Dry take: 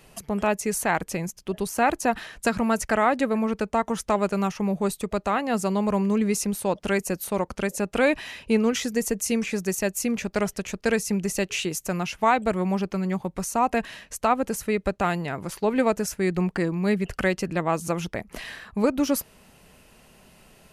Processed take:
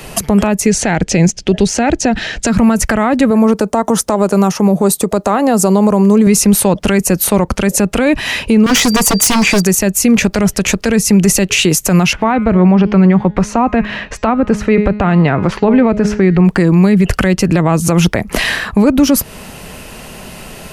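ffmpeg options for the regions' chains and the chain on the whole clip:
-filter_complex "[0:a]asettb=1/sr,asplit=3[a][b][c];[a]atrim=end=0.664[d];[b]atrim=start=0.66:end=2.47,asetpts=PTS-STARTPTS,afade=t=in:d=0.004:c=qsin,afade=t=out:st=1.806:d=0.004:c=qsin,lowpass=f=6.9k:w=0.5412,lowpass=f=6.9k:w=1.3066,equalizer=f=1.1k:t=o:w=0.48:g=-13[e];[c]atrim=start=2.466[f];[d][e]acrossfade=d=0.004:c1=hsin:c2=qsin[g];[g][f]acrossfade=d=0.004:c1=qsin:c2=hsin,asettb=1/sr,asplit=3[h][i][j];[h]atrim=end=3.304[k];[i]atrim=start=3.3:end=6.27,asetpts=PTS-STARTPTS,afade=t=in:d=0.004:c=qsin,afade=t=out:st=2.966:d=0.004:c=qsin,highpass=f=240:p=1,equalizer=f=2.4k:w=0.77:g=-11,acompressor=threshold=-27dB:ratio=3:attack=3.2:release=140:knee=1:detection=peak[l];[j]atrim=start=6.266[m];[k][l]acrossfade=d=0.004:c1=hsin:c2=qsin[n];[n][m]acrossfade=d=0.004:c1=qsin:c2=hsin,asettb=1/sr,asplit=3[o][p][q];[o]atrim=end=8.664[r];[p]atrim=start=8.66:end=9.62,asetpts=PTS-STARTPTS,afade=t=in:d=0.004:c=qsin,afade=t=out:st=0.956:d=0.004:c=qsin,equalizer=f=900:t=o:w=0.98:g=8,aeval=exprs='val(0)+0.00794*sin(2*PI*4700*n/s)':c=same,aeval=exprs='0.0708*(abs(mod(val(0)/0.0708+3,4)-2)-1)':c=same[s];[q]atrim=start=9.616[t];[r][s]acrossfade=d=0.004:c1=hsin:c2=qsin[u];[u][t]acrossfade=d=0.004:c1=qsin:c2=hsin,asettb=1/sr,asplit=3[v][w][x];[v]atrim=end=12.134[y];[w]atrim=start=12.13:end=16.45,asetpts=PTS-STARTPTS,afade=t=in:d=0.004:c=qsin,afade=t=out:st=4.316:d=0.004:c=qsin,lowpass=2.6k,bandreject=f=209.1:t=h:w=4,bandreject=f=418.2:t=h:w=4,bandreject=f=627.3:t=h:w=4,bandreject=f=836.4:t=h:w=4,bandreject=f=1.0455k:t=h:w=4,bandreject=f=1.2546k:t=h:w=4,bandreject=f=1.4637k:t=h:w=4,bandreject=f=1.6728k:t=h:w=4,bandreject=f=1.8819k:t=h:w=4,bandreject=f=2.091k:t=h:w=4,bandreject=f=2.3001k:t=h:w=4,bandreject=f=2.5092k:t=h:w=4,bandreject=f=2.7183k:t=h:w=4,bandreject=f=2.9274k:t=h:w=4,bandreject=f=3.1365k:t=h:w=4,bandreject=f=3.3456k:t=h:w=4,bandreject=f=3.5547k:t=h:w=4,bandreject=f=3.7638k:t=h:w=4,bandreject=f=3.9729k:t=h:w=4,bandreject=f=4.182k:t=h:w=4,bandreject=f=4.3911k:t=h:w=4,bandreject=f=4.6002k:t=h:w=4,bandreject=f=4.8093k:t=h:w=4,bandreject=f=5.0184k:t=h:w=4,bandreject=f=5.2275k:t=h:w=4,bandreject=f=5.4366k:t=h:w=4,bandreject=f=5.6457k:t=h:w=4,bandreject=f=5.8548k:t=h:w=4,bandreject=f=6.0639k:t=h:w=4,bandreject=f=6.273k:t=h:w=4,bandreject=f=6.4821k:t=h:w=4,bandreject=f=6.6912k:t=h:w=4,bandreject=f=6.9003k:t=h:w=4,bandreject=f=7.1094k:t=h:w=4,bandreject=f=7.3185k:t=h:w=4,bandreject=f=7.5276k:t=h:w=4,bandreject=f=7.7367k:t=h:w=4[z];[x]atrim=start=16.446[aa];[y][z]acrossfade=d=0.004:c1=hsin:c2=qsin[ab];[ab][aa]acrossfade=d=0.004:c1=qsin:c2=hsin,acrossover=split=240[ac][ad];[ad]acompressor=threshold=-30dB:ratio=6[ae];[ac][ae]amix=inputs=2:normalize=0,alimiter=level_in=23.5dB:limit=-1dB:release=50:level=0:latency=1,volume=-1dB"

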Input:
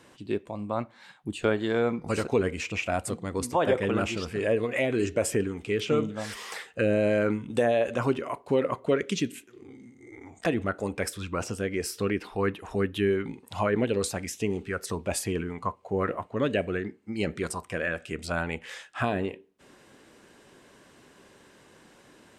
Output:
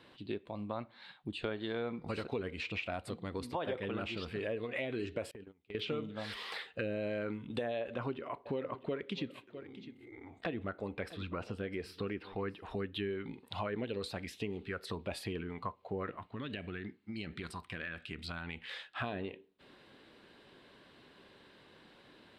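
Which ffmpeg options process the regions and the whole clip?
-filter_complex "[0:a]asettb=1/sr,asplit=3[a][b][c];[a]atrim=end=5.314[d];[b]atrim=start=5.31:end=5.75,asetpts=PTS-STARTPTS,afade=t=in:d=0.004:c=qsin,afade=t=out:st=0.436:d=0.004:c=qsin,agate=range=-31dB:threshold=-29dB:ratio=16:release=100:detection=peak,acompressor=threshold=-39dB:ratio=12:attack=3.2:release=140:knee=1:detection=peak[e];[c]atrim=start=5.746[f];[d][e]acrossfade=d=0.004:c1=hsin:c2=qsin[g];[g][f]acrossfade=d=0.004:c1=qsin:c2=hsin,asettb=1/sr,asplit=3[h][i][j];[h]atrim=end=7.804[k];[i]atrim=start=7.8:end=12.63,asetpts=PTS-STARTPTS,afade=t=in:d=0.004:c=qsin,afade=t=out:st=4.826:d=0.004:c=qsin,highshelf=f=4k:g=-9,aecho=1:1:654:0.112,atrim=end_sample=213003[l];[j]atrim=start=12.626[m];[k][l]acrossfade=d=0.004:c1=hsin:c2=qsin[n];[n][m]acrossfade=d=0.004:c1=qsin:c2=hsin,asettb=1/sr,asplit=3[o][p][q];[o]atrim=end=16.104[r];[p]atrim=start=16.1:end=18.7,asetpts=PTS-STARTPTS,afade=t=in:d=0.004:c=qsin,afade=t=out:st=2.596:d=0.004:c=qsin,equalizer=f=540:t=o:w=0.97:g=-11,acompressor=threshold=-31dB:ratio=6:attack=3.2:release=140:knee=1:detection=peak[s];[q]atrim=start=18.696[t];[r][s]acrossfade=d=0.004:c1=hsin:c2=qsin[u];[u][t]acrossfade=d=0.004:c1=qsin:c2=hsin,highshelf=f=5.1k:t=q:w=3:g=-8.5,acompressor=threshold=-31dB:ratio=3,volume=-5dB"

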